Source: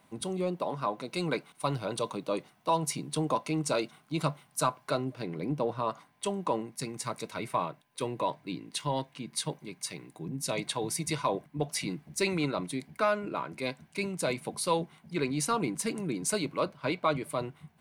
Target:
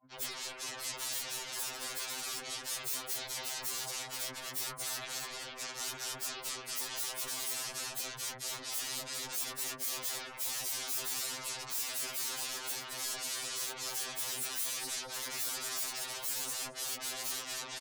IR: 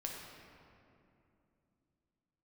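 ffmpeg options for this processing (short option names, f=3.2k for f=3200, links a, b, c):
-filter_complex "[0:a]asettb=1/sr,asplit=3[a][b][c];[a]atrim=end=9.644[d];[b]atrim=start=9.64:end=12.09,asetpts=PTS-STARTPTS,afade=t=in:d=0.004:c=qsin,afade=t=out:st=2.446:d=0.004:c=qsin,equalizer=f=240:w=5.3:g=-15[e];[c]atrim=start=12.086[f];[d][e]acrossfade=d=0.004:c1=hsin:c2=qsin[g];[g][f]acrossfade=d=0.004:c1=qsin:c2=hsin,afftfilt=real='re*gte(hypot(re,im),0.00282)':imag='im*gte(hypot(re,im),0.00282)':win_size=1024:overlap=0.75,asplit=2[h][i];[i]adelay=218,lowpass=f=1.1k:p=1,volume=-5dB,asplit=2[j][k];[k]adelay=218,lowpass=f=1.1k:p=1,volume=0.48,asplit=2[l][m];[m]adelay=218,lowpass=f=1.1k:p=1,volume=0.48,asplit=2[n][o];[o]adelay=218,lowpass=f=1.1k:p=1,volume=0.48,asplit=2[p][q];[q]adelay=218,lowpass=f=1.1k:p=1,volume=0.48,asplit=2[r][s];[s]adelay=218,lowpass=f=1.1k:p=1,volume=0.48[t];[h][j][l][n][p][r][t]amix=inputs=7:normalize=0,acompressor=threshold=-43dB:ratio=8,alimiter=level_in=17dB:limit=-24dB:level=0:latency=1:release=63,volume=-17dB,aeval=exprs='0.00891*sin(PI/2*10*val(0)/0.00891)':c=same,bass=f=250:g=-7,treble=f=4k:g=10,agate=range=-33dB:threshold=-39dB:ratio=3:detection=peak,afftfilt=real='re*2.45*eq(mod(b,6),0)':imag='im*2.45*eq(mod(b,6),0)':win_size=2048:overlap=0.75,volume=3dB"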